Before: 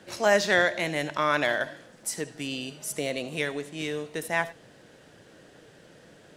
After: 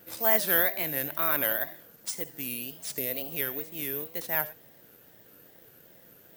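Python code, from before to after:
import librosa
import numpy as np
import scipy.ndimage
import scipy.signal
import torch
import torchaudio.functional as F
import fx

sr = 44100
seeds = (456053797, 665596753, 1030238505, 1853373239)

y = (np.kron(x[::3], np.eye(3)[0]) * 3)[:len(x)]
y = fx.wow_flutter(y, sr, seeds[0], rate_hz=2.1, depth_cents=150.0)
y = F.gain(torch.from_numpy(y), -6.5).numpy()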